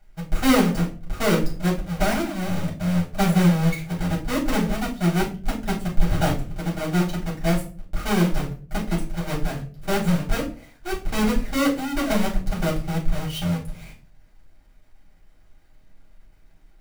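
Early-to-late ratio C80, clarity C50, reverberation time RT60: 15.0 dB, 10.0 dB, 0.40 s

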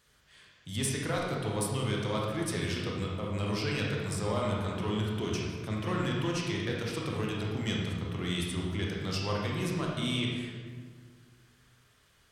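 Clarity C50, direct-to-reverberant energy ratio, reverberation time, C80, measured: 0.0 dB, -3.0 dB, 1.7 s, 2.5 dB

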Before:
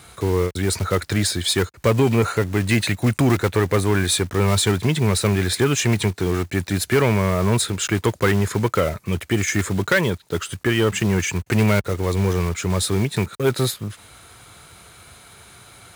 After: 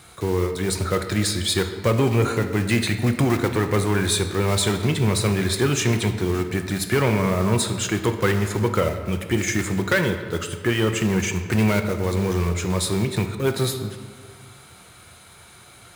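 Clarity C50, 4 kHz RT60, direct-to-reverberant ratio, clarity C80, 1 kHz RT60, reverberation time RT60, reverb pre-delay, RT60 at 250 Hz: 8.5 dB, 1.1 s, 6.0 dB, 10.0 dB, 1.8 s, 1.8 s, 5 ms, 2.1 s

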